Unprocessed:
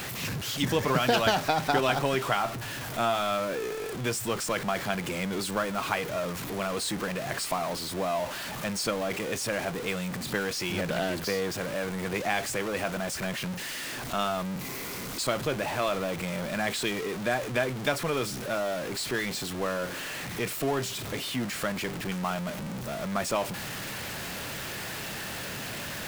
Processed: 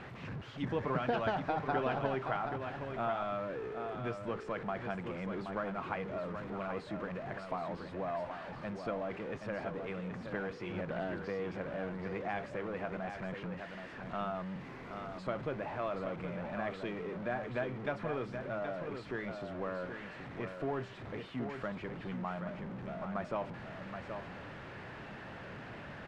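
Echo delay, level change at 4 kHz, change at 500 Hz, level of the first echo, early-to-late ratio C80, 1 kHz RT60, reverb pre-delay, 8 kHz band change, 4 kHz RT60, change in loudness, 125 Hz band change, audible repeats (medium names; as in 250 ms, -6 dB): 775 ms, -20.0 dB, -7.5 dB, -7.0 dB, no reverb, no reverb, no reverb, under -30 dB, no reverb, -9.0 dB, -7.5 dB, 1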